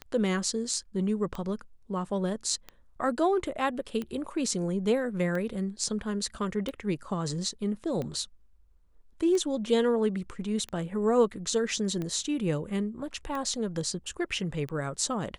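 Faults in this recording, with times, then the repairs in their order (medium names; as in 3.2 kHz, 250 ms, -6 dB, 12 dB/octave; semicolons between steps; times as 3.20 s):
tick 45 rpm -22 dBFS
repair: de-click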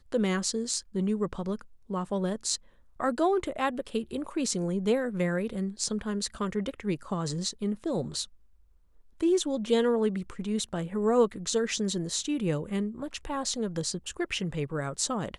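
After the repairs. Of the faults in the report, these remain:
nothing left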